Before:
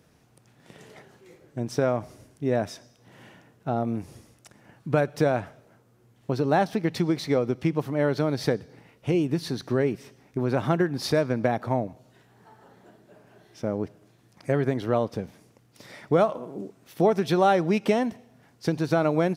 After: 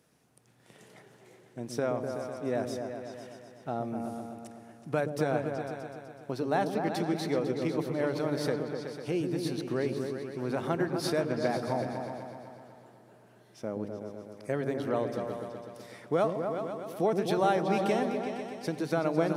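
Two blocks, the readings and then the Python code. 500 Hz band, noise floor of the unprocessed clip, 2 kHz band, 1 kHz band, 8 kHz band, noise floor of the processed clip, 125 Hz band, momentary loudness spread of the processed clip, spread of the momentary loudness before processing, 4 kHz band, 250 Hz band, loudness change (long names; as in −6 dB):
−4.5 dB, −61 dBFS, −4.5 dB, −4.5 dB, −2.5 dB, −59 dBFS, −8.0 dB, 15 LU, 14 LU, −4.5 dB, −5.5 dB, −6.0 dB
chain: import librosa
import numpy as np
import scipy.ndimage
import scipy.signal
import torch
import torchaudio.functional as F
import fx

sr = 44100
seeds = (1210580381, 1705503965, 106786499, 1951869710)

y = fx.highpass(x, sr, hz=200.0, slope=6)
y = fx.peak_eq(y, sr, hz=10000.0, db=6.0, octaves=0.76)
y = fx.echo_opening(y, sr, ms=125, hz=400, octaves=2, feedback_pct=70, wet_db=-3)
y = y * 10.0 ** (-6.0 / 20.0)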